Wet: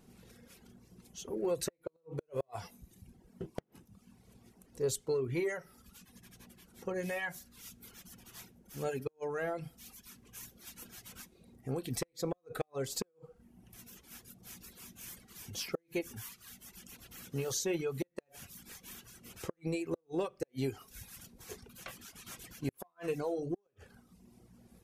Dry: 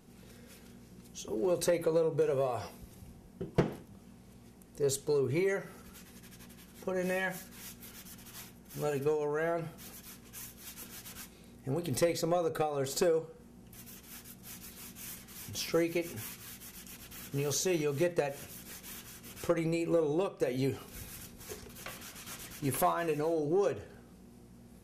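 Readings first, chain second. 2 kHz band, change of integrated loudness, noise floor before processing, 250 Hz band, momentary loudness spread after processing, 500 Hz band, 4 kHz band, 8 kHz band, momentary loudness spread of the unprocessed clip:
-4.0 dB, -6.5 dB, -56 dBFS, -5.0 dB, 21 LU, -6.5 dB, -3.5 dB, -3.0 dB, 19 LU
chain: inverted gate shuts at -21 dBFS, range -34 dB; reverb removal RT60 1.1 s; trim -2 dB

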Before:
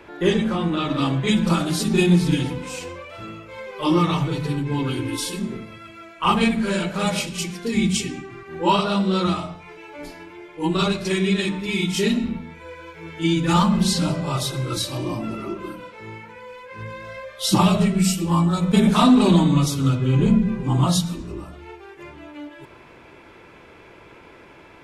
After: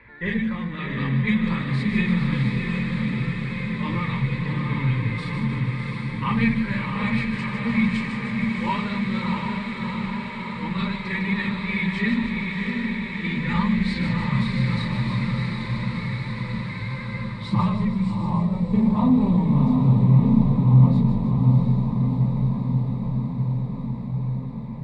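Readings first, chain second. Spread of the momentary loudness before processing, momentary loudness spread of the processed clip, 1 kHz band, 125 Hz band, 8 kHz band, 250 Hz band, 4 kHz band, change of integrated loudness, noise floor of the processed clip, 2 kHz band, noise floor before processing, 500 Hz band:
21 LU, 10 LU, -5.5 dB, +3.0 dB, under -20 dB, -1.0 dB, -9.5 dB, -2.5 dB, -32 dBFS, +2.5 dB, -47 dBFS, -10.0 dB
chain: high-order bell 620 Hz -15 dB 2.8 oct; echo that smears into a reverb 687 ms, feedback 76%, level -3.5 dB; vibrato 12 Hz 29 cents; low-pass sweep 1.6 kHz -> 780 Hz, 17.04–18.53 s; rippled EQ curve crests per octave 0.97, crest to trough 11 dB; feedback echo behind a high-pass 153 ms, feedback 66%, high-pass 3.8 kHz, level -5.5 dB

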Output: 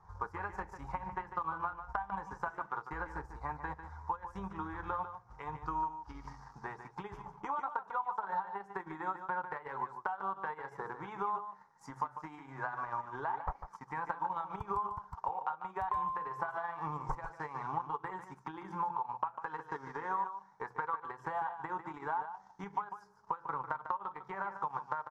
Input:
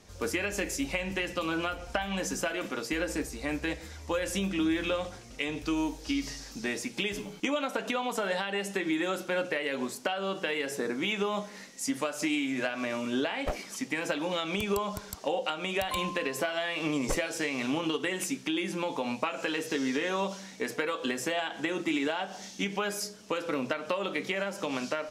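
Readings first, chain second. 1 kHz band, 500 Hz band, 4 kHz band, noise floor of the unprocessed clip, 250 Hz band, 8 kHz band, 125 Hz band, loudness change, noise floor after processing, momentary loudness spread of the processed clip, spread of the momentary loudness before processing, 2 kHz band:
+2.0 dB, -15.0 dB, under -25 dB, -47 dBFS, -18.0 dB, under -30 dB, -7.0 dB, -8.0 dB, -61 dBFS, 9 LU, 4 LU, -11.5 dB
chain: FFT filter 150 Hz 0 dB, 250 Hz -22 dB, 400 Hz -9 dB, 610 Hz -13 dB, 900 Hz +14 dB, 1.6 kHz -3 dB, 2.7 kHz -28 dB, 5.5 kHz -21 dB, 9.2 kHz -29 dB; transient shaper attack +3 dB, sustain -11 dB; compression 6:1, threshold -29 dBFS, peak gain reduction 11.5 dB; peaking EQ 180 Hz +2 dB 0.45 oct; delay 148 ms -10 dB; trim -3 dB

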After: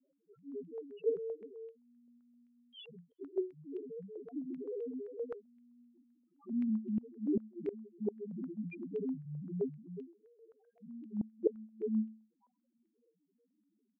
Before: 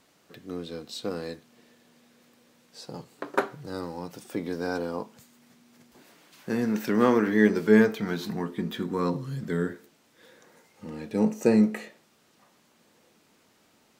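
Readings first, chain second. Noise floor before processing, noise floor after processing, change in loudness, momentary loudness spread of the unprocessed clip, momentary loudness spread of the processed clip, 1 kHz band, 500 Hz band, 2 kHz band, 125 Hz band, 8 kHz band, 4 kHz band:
-64 dBFS, -80 dBFS, -13.0 dB, 20 LU, 16 LU, under -30 dB, -11.0 dB, -30.5 dB, -13.0 dB, under -30 dB, under -15 dB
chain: frequency axis rescaled in octaves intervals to 87%; on a send: delay 366 ms -7.5 dB; on the sum: loudest bins only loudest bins 1; high-pass 210 Hz 12 dB/octave; inverted gate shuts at -27 dBFS, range -25 dB; step-sequenced low-pass 7.7 Hz 510–2800 Hz; trim +1.5 dB

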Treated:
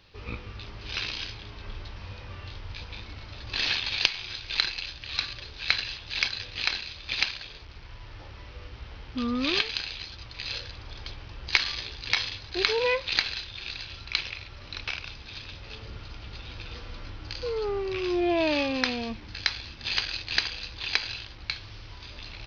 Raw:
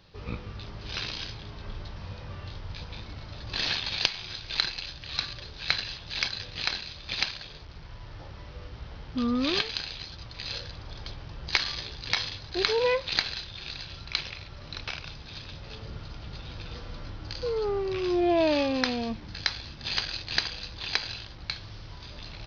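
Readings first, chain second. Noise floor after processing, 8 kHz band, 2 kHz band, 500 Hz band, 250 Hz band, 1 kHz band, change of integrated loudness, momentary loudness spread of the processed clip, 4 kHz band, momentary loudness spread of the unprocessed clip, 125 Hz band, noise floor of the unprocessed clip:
-45 dBFS, no reading, +3.5 dB, -1.5 dB, -1.5 dB, -1.0 dB, +1.5 dB, 17 LU, +1.0 dB, 16 LU, -2.0 dB, -45 dBFS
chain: fifteen-band graphic EQ 160 Hz -8 dB, 630 Hz -3 dB, 2.5 kHz +5 dB

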